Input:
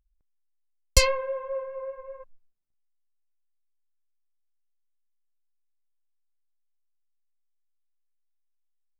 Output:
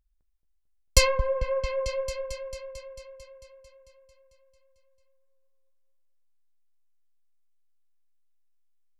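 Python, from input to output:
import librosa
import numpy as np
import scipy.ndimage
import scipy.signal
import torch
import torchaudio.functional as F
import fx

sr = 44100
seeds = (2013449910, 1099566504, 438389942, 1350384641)

y = fx.echo_opening(x, sr, ms=223, hz=750, octaves=1, feedback_pct=70, wet_db=-6)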